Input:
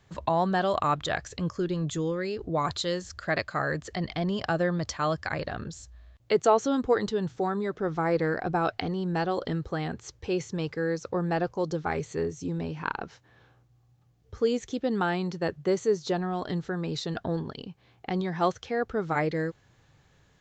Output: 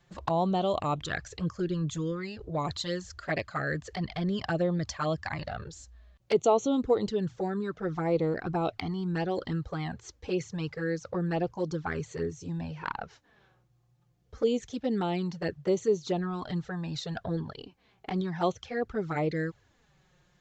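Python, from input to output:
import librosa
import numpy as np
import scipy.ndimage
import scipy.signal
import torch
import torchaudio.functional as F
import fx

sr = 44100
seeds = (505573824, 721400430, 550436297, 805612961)

y = fx.env_flanger(x, sr, rest_ms=5.9, full_db=-22.5)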